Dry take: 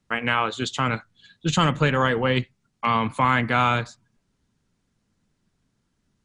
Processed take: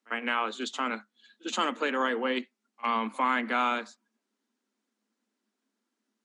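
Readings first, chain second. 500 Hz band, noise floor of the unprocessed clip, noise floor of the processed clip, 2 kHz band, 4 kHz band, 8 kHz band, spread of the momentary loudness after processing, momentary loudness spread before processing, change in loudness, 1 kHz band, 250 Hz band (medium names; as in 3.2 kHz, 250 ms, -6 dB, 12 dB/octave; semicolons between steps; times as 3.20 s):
-6.5 dB, -73 dBFS, -84 dBFS, -6.5 dB, -7.0 dB, -7.0 dB, 9 LU, 9 LU, -7.0 dB, -6.0 dB, -7.5 dB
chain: Chebyshev high-pass 210 Hz, order 8; reverse echo 50 ms -24 dB; trim -6 dB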